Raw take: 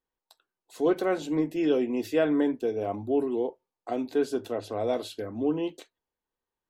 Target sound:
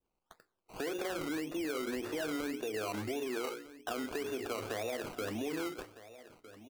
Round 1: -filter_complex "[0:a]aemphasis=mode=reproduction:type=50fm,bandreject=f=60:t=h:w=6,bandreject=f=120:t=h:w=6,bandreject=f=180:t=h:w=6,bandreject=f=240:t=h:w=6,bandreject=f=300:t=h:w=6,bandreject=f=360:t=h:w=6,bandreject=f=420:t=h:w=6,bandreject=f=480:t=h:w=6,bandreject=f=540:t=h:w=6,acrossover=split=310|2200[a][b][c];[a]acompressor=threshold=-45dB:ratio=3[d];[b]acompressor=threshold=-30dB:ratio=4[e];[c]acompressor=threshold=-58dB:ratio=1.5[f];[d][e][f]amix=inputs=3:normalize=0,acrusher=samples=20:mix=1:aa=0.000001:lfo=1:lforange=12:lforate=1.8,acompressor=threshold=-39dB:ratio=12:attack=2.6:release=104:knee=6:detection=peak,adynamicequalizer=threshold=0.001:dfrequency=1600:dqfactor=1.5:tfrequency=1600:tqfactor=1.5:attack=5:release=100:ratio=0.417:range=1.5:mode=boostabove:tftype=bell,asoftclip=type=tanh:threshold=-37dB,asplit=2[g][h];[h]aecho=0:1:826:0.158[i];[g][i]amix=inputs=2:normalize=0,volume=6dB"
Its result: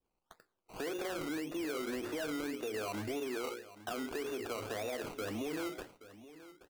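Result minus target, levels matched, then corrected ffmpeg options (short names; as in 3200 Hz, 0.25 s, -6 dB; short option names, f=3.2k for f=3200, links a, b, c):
soft clip: distortion +16 dB; echo 0.432 s early
-filter_complex "[0:a]aemphasis=mode=reproduction:type=50fm,bandreject=f=60:t=h:w=6,bandreject=f=120:t=h:w=6,bandreject=f=180:t=h:w=6,bandreject=f=240:t=h:w=6,bandreject=f=300:t=h:w=6,bandreject=f=360:t=h:w=6,bandreject=f=420:t=h:w=6,bandreject=f=480:t=h:w=6,bandreject=f=540:t=h:w=6,acrossover=split=310|2200[a][b][c];[a]acompressor=threshold=-45dB:ratio=3[d];[b]acompressor=threshold=-30dB:ratio=4[e];[c]acompressor=threshold=-58dB:ratio=1.5[f];[d][e][f]amix=inputs=3:normalize=0,acrusher=samples=20:mix=1:aa=0.000001:lfo=1:lforange=12:lforate=1.8,acompressor=threshold=-39dB:ratio=12:attack=2.6:release=104:knee=6:detection=peak,adynamicequalizer=threshold=0.001:dfrequency=1600:dqfactor=1.5:tfrequency=1600:tqfactor=1.5:attack=5:release=100:ratio=0.417:range=1.5:mode=boostabove:tftype=bell,asoftclip=type=tanh:threshold=-27.5dB,asplit=2[g][h];[h]aecho=0:1:1258:0.158[i];[g][i]amix=inputs=2:normalize=0,volume=6dB"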